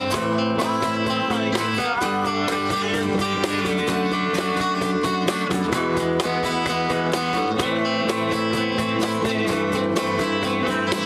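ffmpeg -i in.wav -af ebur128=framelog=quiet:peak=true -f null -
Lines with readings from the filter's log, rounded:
Integrated loudness:
  I:         -22.0 LUFS
  Threshold: -32.0 LUFS
Loudness range:
  LRA:         0.2 LU
  Threshold: -42.0 LUFS
  LRA low:   -22.1 LUFS
  LRA high:  -21.9 LUFS
True peak:
  Peak:       -6.7 dBFS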